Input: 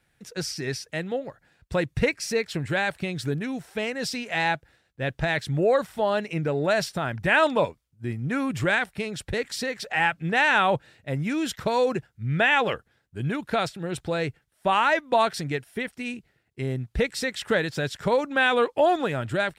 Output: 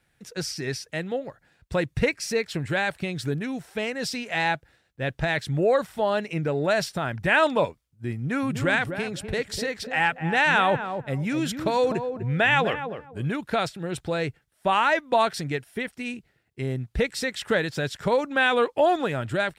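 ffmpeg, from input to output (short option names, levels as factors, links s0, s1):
-filter_complex "[0:a]asettb=1/sr,asplit=3[s0][s1][s2];[s0]atrim=end=8.184[s3];[s1]atrim=start=8.18:end=13.28,asetpts=PTS-STARTPTS,afade=t=in:d=0.004:c=qsin,afade=t=out:st=5.096:d=0.004:c=qsin,asplit=2[s4][s5];[s5]adelay=249,lowpass=f=840:p=1,volume=0.473,asplit=2[s6][s7];[s7]adelay=249,lowpass=f=840:p=1,volume=0.24,asplit=2[s8][s9];[s9]adelay=249,lowpass=f=840:p=1,volume=0.24[s10];[s4][s6][s8][s10]amix=inputs=4:normalize=0,atrim=end_sample=224910[s11];[s2]atrim=start=13.276[s12];[s3][s11]acrossfade=d=0.004:c1=hsin:c2=qsin[s13];[s13][s12]acrossfade=d=0.004:c1=qsin:c2=hsin"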